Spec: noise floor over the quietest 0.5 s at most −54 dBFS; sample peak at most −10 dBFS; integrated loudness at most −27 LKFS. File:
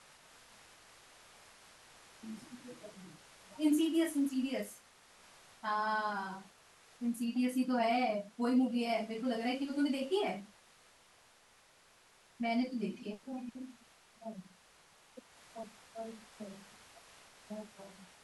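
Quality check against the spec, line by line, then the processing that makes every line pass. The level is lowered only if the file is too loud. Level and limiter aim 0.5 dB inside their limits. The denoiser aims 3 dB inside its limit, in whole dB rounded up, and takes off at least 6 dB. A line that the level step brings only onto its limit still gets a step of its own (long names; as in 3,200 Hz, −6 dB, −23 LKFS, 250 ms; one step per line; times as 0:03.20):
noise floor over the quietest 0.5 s −65 dBFS: in spec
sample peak −20.5 dBFS: in spec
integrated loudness −35.5 LKFS: in spec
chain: no processing needed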